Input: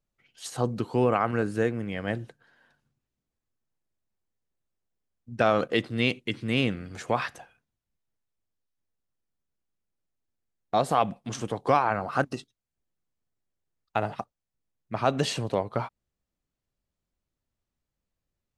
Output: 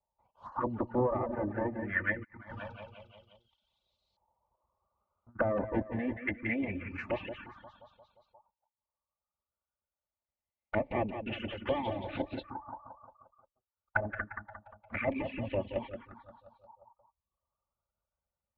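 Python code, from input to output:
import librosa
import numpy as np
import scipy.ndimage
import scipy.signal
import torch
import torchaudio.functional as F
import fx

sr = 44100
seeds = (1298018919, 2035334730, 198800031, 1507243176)

y = fx.lower_of_two(x, sr, delay_ms=3.4)
y = fx.env_lowpass_down(y, sr, base_hz=950.0, full_db=-28.5)
y = fx.high_shelf(y, sr, hz=4600.0, db=-6.0)
y = fx.echo_feedback(y, sr, ms=176, feedback_pct=56, wet_db=-7)
y = fx.dereverb_blind(y, sr, rt60_s=0.53)
y = fx.env_phaser(y, sr, low_hz=290.0, high_hz=1400.0, full_db=-30.0)
y = fx.filter_lfo_lowpass(y, sr, shape='saw_up', hz=0.24, low_hz=870.0, high_hz=4200.0, q=6.9)
y = fx.over_compress(y, sr, threshold_db=-54.0, ratio=-0.5, at=(2.23, 5.35), fade=0.02)
y = scipy.signal.sosfilt(scipy.signal.butter(2, 50.0, 'highpass', fs=sr, output='sos'), y)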